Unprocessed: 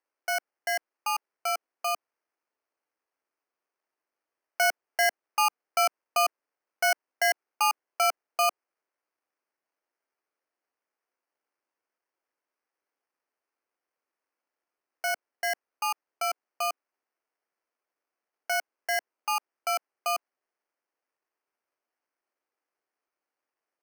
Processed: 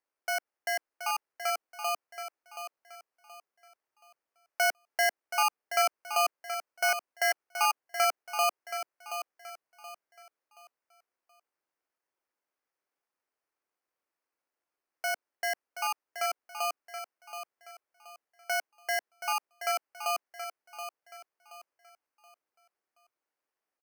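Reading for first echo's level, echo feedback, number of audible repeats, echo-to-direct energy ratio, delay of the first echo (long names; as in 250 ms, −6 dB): −9.5 dB, 33%, 3, −9.0 dB, 726 ms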